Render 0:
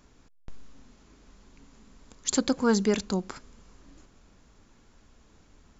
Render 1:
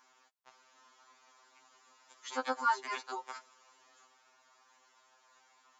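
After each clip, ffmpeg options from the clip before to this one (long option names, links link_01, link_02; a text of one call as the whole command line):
ffmpeg -i in.wav -filter_complex "[0:a]acrossover=split=2800[link_01][link_02];[link_02]acompressor=threshold=-45dB:ratio=4:attack=1:release=60[link_03];[link_01][link_03]amix=inputs=2:normalize=0,highpass=frequency=920:width_type=q:width=1.8,afftfilt=real='re*2.45*eq(mod(b,6),0)':imag='im*2.45*eq(mod(b,6),0)':win_size=2048:overlap=0.75" out.wav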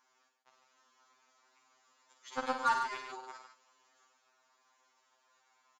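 ffmpeg -i in.wav -filter_complex "[0:a]aeval=exprs='0.133*(cos(1*acos(clip(val(0)/0.133,-1,1)))-cos(1*PI/2))+0.00596*(cos(3*acos(clip(val(0)/0.133,-1,1)))-cos(3*PI/2))+0.00841*(cos(7*acos(clip(val(0)/0.133,-1,1)))-cos(7*PI/2))':channel_layout=same,asplit=2[link_01][link_02];[link_02]aecho=0:1:52.48|102|145.8:0.447|0.355|0.398[link_03];[link_01][link_03]amix=inputs=2:normalize=0" out.wav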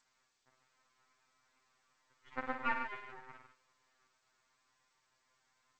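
ffmpeg -i in.wav -af "aeval=exprs='max(val(0),0)':channel_layout=same,lowpass=frequency=2000:width_type=q:width=1.7,volume=-4dB" -ar 16000 -c:a g722 out.g722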